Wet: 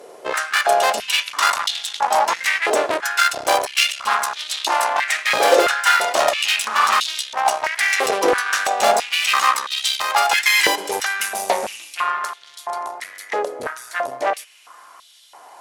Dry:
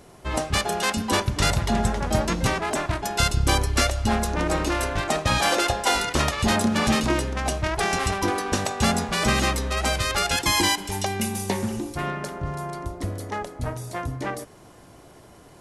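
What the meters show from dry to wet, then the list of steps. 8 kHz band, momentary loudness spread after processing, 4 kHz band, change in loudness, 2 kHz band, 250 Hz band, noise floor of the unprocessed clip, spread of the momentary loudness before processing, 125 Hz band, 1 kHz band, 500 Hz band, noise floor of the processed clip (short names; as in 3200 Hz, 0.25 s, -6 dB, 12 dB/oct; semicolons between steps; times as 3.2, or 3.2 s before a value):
+3.5 dB, 11 LU, +5.5 dB, +5.5 dB, +8.0 dB, -10.0 dB, -49 dBFS, 10 LU, under -25 dB, +7.5 dB, +6.0 dB, -46 dBFS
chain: added harmonics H 5 -18 dB, 8 -16 dB, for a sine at -7 dBFS; stepped high-pass 3 Hz 480–3500 Hz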